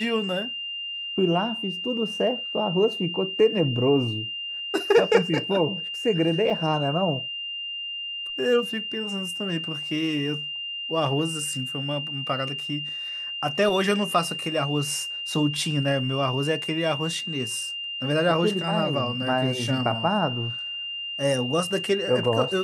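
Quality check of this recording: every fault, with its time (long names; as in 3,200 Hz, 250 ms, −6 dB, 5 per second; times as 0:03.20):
whistle 2,800 Hz −30 dBFS
0:06.50: drop-out 4 ms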